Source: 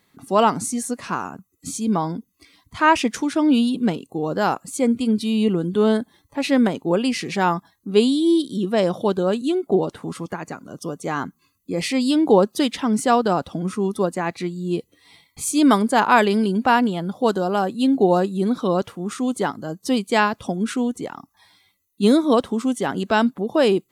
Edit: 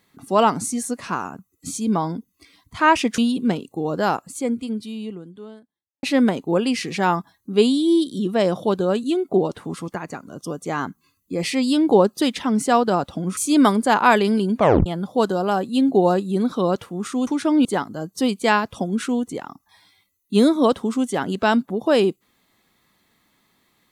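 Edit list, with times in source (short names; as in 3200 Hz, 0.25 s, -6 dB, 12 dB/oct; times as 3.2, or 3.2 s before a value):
3.18–3.56 move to 19.33
4.43–6.41 fade out quadratic
13.75–15.43 cut
16.63 tape stop 0.29 s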